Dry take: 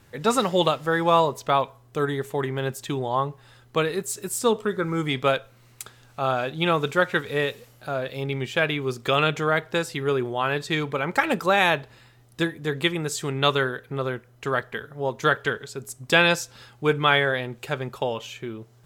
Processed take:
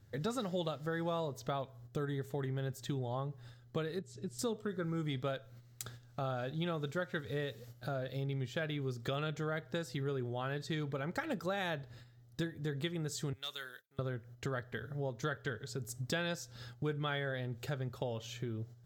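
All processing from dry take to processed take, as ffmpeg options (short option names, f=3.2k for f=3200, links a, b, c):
-filter_complex "[0:a]asettb=1/sr,asplit=3[a][b][c];[a]atrim=end=3.994[d];[b]atrim=start=3.99:end=4.39,asetpts=PTS-STARTPTS,afade=t=in:d=0.004:c=qsin,afade=t=out:st=0.396:d=0.004:c=qsin,lowpass=3.2k,equalizer=f=1.2k:t=o:w=2.6:g=-13.5[e];[c]atrim=start=4.386[f];[d][e]acrossfade=d=0.004:c1=hsin:c2=qsin[g];[g][f]acrossfade=d=0.004:c1=qsin:c2=hsin,asettb=1/sr,asplit=3[h][i][j];[h]atrim=end=13.334[k];[i]atrim=start=13.33:end=13.99,asetpts=PTS-STARTPTS,afade=t=in:d=0.004:c=qsin,afade=t=out:st=0.656:d=0.004:c=qsin,agate=range=-33dB:threshold=-41dB:ratio=3:release=100:detection=peak,aderivative,asoftclip=type=hard:threshold=-22dB[l];[j]atrim=start=13.986[m];[k][l]acrossfade=d=0.004:c1=hsin:c2=qsin[n];[n][m]acrossfade=d=0.004:c1=qsin:c2=hsin,agate=range=-10dB:threshold=-49dB:ratio=16:detection=peak,equalizer=f=100:t=o:w=0.67:g=10,equalizer=f=400:t=o:w=0.67:g=-3,equalizer=f=1k:t=o:w=0.67:g=-10,equalizer=f=2.5k:t=o:w=0.67:g=-10,equalizer=f=10k:t=o:w=0.67:g=-10,acompressor=threshold=-38dB:ratio=3"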